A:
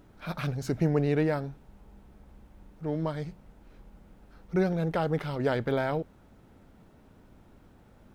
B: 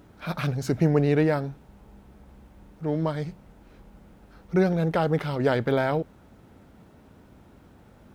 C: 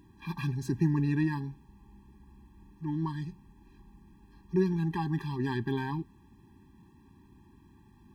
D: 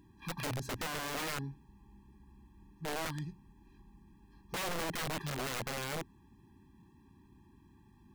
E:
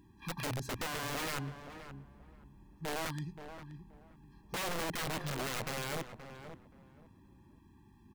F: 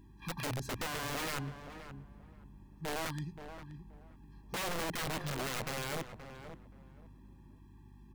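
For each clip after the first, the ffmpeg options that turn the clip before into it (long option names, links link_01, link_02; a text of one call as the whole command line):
ffmpeg -i in.wav -af "highpass=47,volume=4.5dB" out.wav
ffmpeg -i in.wav -af "afftfilt=real='re*eq(mod(floor(b*sr/1024/390),2),0)':imag='im*eq(mod(floor(b*sr/1024/390),2),0)':win_size=1024:overlap=0.75,volume=-4.5dB" out.wav
ffmpeg -i in.wav -af "aeval=exprs='(mod(26.6*val(0)+1,2)-1)/26.6':channel_layout=same,volume=-3.5dB" out.wav
ffmpeg -i in.wav -filter_complex "[0:a]asplit=2[link_01][link_02];[link_02]adelay=526,lowpass=frequency=1600:poles=1,volume=-9.5dB,asplit=2[link_03][link_04];[link_04]adelay=526,lowpass=frequency=1600:poles=1,volume=0.22,asplit=2[link_05][link_06];[link_06]adelay=526,lowpass=frequency=1600:poles=1,volume=0.22[link_07];[link_01][link_03][link_05][link_07]amix=inputs=4:normalize=0" out.wav
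ffmpeg -i in.wav -af "aeval=exprs='val(0)+0.00158*(sin(2*PI*50*n/s)+sin(2*PI*2*50*n/s)/2+sin(2*PI*3*50*n/s)/3+sin(2*PI*4*50*n/s)/4+sin(2*PI*5*50*n/s)/5)':channel_layout=same" out.wav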